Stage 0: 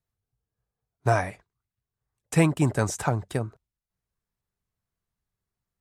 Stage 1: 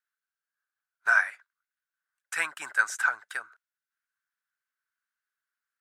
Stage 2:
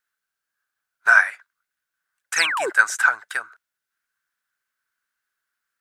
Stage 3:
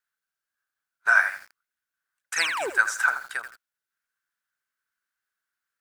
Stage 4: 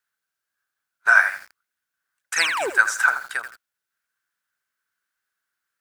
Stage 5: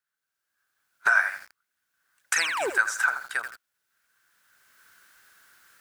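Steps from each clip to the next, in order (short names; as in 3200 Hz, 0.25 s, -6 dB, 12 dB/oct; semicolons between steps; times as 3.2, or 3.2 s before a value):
resonant high-pass 1500 Hz, resonance Q 7.5; gain -4 dB
painted sound fall, 2.36–2.7, 330–7000 Hz -32 dBFS; gain +8 dB
lo-fi delay 83 ms, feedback 35%, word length 6-bit, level -10 dB; gain -5 dB
HPF 47 Hz; gain +4 dB
recorder AGC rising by 17 dB/s; gain -6.5 dB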